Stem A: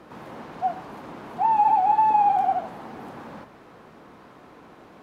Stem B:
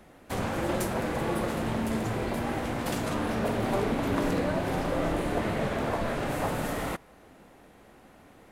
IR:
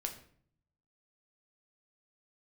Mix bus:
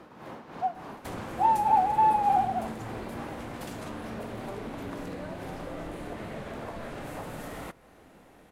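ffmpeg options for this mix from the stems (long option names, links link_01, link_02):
-filter_complex "[0:a]tremolo=f=3.4:d=0.63,volume=-1dB[link_01];[1:a]acompressor=threshold=-38dB:ratio=2.5,adelay=750,volume=-2.5dB,asplit=2[link_02][link_03];[link_03]volume=-13.5dB[link_04];[2:a]atrim=start_sample=2205[link_05];[link_04][link_05]afir=irnorm=-1:irlink=0[link_06];[link_01][link_02][link_06]amix=inputs=3:normalize=0"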